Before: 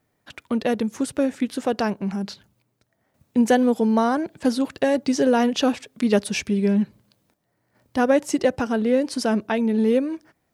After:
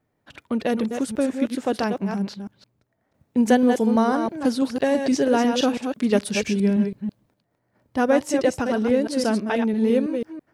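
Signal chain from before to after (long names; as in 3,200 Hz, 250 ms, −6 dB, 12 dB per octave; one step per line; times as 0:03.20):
delay that plays each chunk backwards 165 ms, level −6 dB
one half of a high-frequency compander decoder only
level −1 dB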